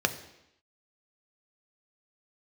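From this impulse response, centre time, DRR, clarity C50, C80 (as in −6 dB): 8 ms, 7.5 dB, 13.0 dB, 15.0 dB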